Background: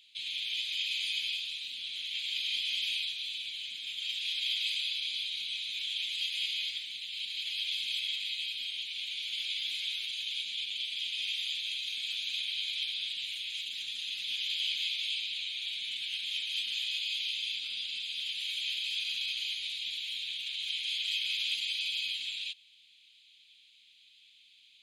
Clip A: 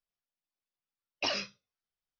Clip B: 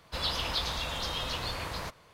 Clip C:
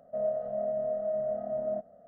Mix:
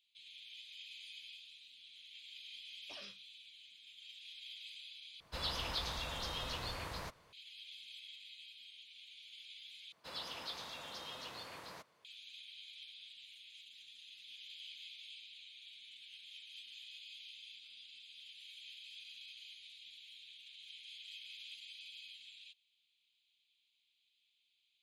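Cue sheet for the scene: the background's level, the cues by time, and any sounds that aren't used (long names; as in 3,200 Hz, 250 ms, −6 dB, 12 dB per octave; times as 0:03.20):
background −18.5 dB
0:01.67: mix in A −16 dB + brickwall limiter −26.5 dBFS
0:05.20: overwrite with B −7.5 dB
0:09.92: overwrite with B −13 dB + high-pass filter 190 Hz
not used: C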